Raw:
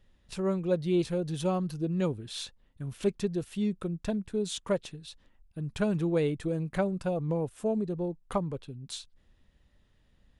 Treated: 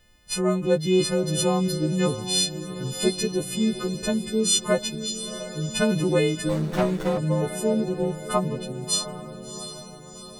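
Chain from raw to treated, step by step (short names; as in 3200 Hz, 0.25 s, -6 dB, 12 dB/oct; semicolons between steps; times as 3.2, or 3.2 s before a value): frequency quantiser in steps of 3 st; diffused feedback echo 0.721 s, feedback 52%, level -11 dB; 6.49–7.18 running maximum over 17 samples; gain +6.5 dB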